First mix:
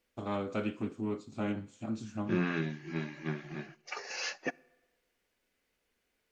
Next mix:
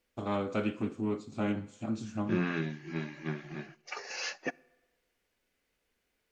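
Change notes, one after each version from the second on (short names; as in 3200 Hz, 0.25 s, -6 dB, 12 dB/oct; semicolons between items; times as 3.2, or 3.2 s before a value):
first voice: send +8.5 dB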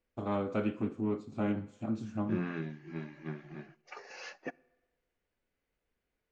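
second voice -4.0 dB; master: add high shelf 2800 Hz -11.5 dB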